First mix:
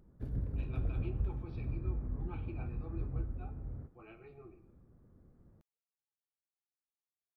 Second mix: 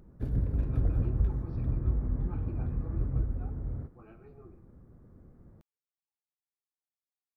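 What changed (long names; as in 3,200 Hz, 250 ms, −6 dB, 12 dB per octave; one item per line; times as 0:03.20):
speech: add flat-topped bell 2,800 Hz −10 dB 1.2 octaves
background +7.5 dB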